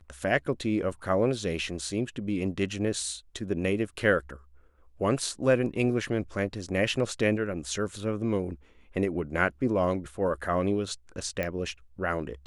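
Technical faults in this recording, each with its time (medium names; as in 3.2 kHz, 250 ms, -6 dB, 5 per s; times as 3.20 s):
11.43 s: pop -17 dBFS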